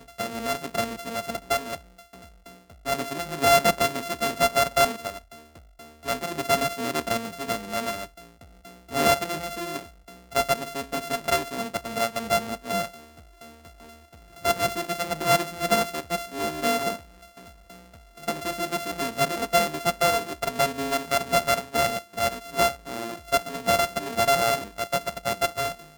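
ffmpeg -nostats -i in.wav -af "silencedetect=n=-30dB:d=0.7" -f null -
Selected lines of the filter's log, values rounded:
silence_start: 1.76
silence_end: 2.86 | silence_duration: 1.11
silence_start: 5.18
silence_end: 6.07 | silence_duration: 0.89
silence_start: 8.05
silence_end: 8.92 | silence_duration: 0.88
silence_start: 12.86
silence_end: 14.45 | silence_duration: 1.59
silence_start: 16.96
silence_end: 18.23 | silence_duration: 1.28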